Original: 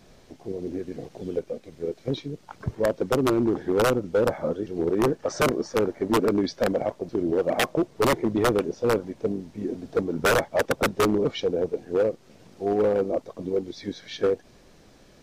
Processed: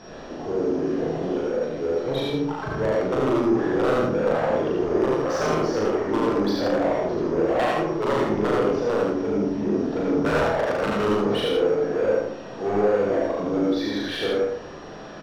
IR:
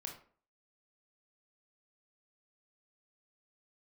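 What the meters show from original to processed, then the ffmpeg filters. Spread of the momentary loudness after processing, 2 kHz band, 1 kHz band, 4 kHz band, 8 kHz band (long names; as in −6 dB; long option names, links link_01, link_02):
5 LU, +0.5 dB, +3.0 dB, +1.5 dB, can't be measured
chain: -filter_complex "[0:a]bandreject=frequency=2200:width=5.8,acompressor=threshold=-21dB:ratio=6,asoftclip=type=tanh:threshold=-29dB,adynamicsmooth=sensitivity=5.5:basefreq=3700,aeval=exprs='val(0)+0.000891*sin(2*PI*5600*n/s)':channel_layout=same,asplit=2[link_01][link_02];[link_02]highpass=frequency=720:poles=1,volume=16dB,asoftclip=type=tanh:threshold=-28.5dB[link_03];[link_01][link_03]amix=inputs=2:normalize=0,lowpass=frequency=2000:poles=1,volume=-6dB,aecho=1:1:37.9|87.46:0.891|0.794,asplit=2[link_04][link_05];[1:a]atrim=start_sample=2205,adelay=74[link_06];[link_05][link_06]afir=irnorm=-1:irlink=0,volume=2dB[link_07];[link_04][link_07]amix=inputs=2:normalize=0,volume=5.5dB"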